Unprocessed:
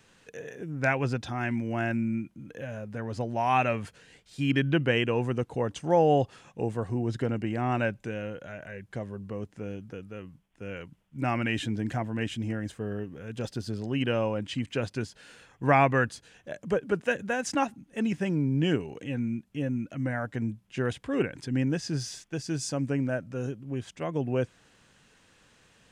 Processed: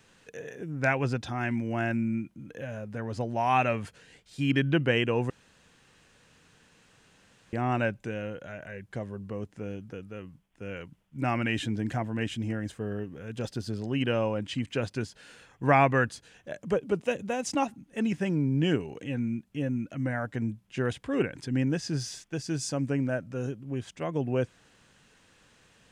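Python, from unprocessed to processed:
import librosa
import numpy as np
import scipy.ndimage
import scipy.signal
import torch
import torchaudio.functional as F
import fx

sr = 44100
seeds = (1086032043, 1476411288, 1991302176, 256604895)

y = fx.peak_eq(x, sr, hz=1600.0, db=-11.0, octaves=0.44, at=(16.76, 17.67))
y = fx.edit(y, sr, fx.room_tone_fill(start_s=5.3, length_s=2.23), tone=tone)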